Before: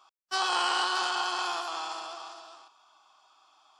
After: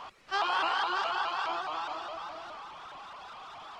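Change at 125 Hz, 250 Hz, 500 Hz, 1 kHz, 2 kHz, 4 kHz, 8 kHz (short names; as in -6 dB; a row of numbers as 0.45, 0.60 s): n/a, -2.5 dB, +1.0 dB, -0.5 dB, -1.0 dB, -6.0 dB, under -10 dB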